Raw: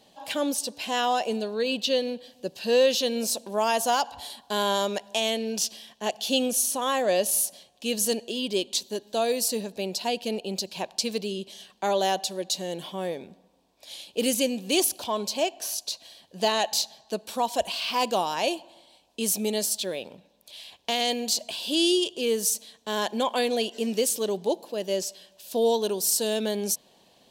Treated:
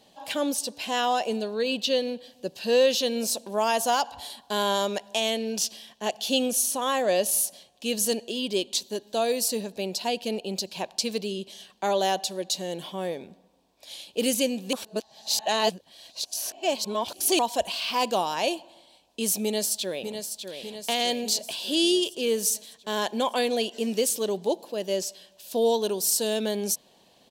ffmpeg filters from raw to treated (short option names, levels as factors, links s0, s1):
-filter_complex "[0:a]asplit=2[s0][s1];[s1]afade=t=in:st=19.43:d=0.01,afade=t=out:st=20.61:d=0.01,aecho=0:1:600|1200|1800|2400|3000|3600|4200|4800:0.421697|0.253018|0.151811|0.0910864|0.0546519|0.0327911|0.0196747|0.0118048[s2];[s0][s2]amix=inputs=2:normalize=0,asplit=3[s3][s4][s5];[s3]atrim=end=14.732[s6];[s4]atrim=start=14.728:end=17.392,asetpts=PTS-STARTPTS,areverse[s7];[s5]atrim=start=17.388[s8];[s6][s7]acrossfade=d=0.004:c1=hsin:c2=hsin[s9];[s9][s8]acrossfade=d=0.004:c1=hsin:c2=hsin"